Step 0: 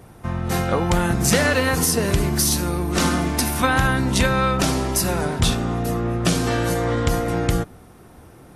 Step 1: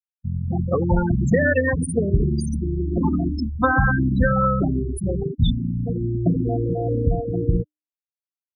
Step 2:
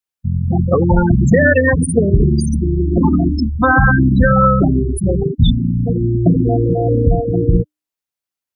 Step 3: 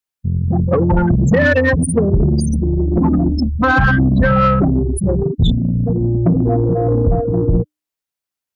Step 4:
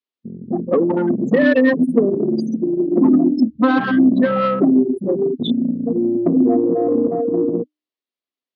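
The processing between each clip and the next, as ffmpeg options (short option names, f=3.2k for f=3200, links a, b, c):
-af "afftfilt=real='re*gte(hypot(re,im),0.355)':imag='im*gte(hypot(re,im),0.355)':win_size=1024:overlap=0.75,bandreject=f=302.9:t=h:w=4,bandreject=f=605.8:t=h:w=4,bandreject=f=908.7:t=h:w=4,bandreject=f=1.2116k:t=h:w=4,afftdn=nr=21:nf=-32,volume=2dB"
-af "alimiter=level_in=9dB:limit=-1dB:release=50:level=0:latency=1,volume=-1dB"
-af "acontrast=52,volume=-5dB"
-af "highpass=f=240:w=0.5412,highpass=f=240:w=1.3066,equalizer=f=250:t=q:w=4:g=9,equalizer=f=370:t=q:w=4:g=4,equalizer=f=860:t=q:w=4:g=-6,equalizer=f=1.5k:t=q:w=4:g=-9,equalizer=f=2.4k:t=q:w=4:g=-4,lowpass=f=4.3k:w=0.5412,lowpass=f=4.3k:w=1.3066,volume=-1dB"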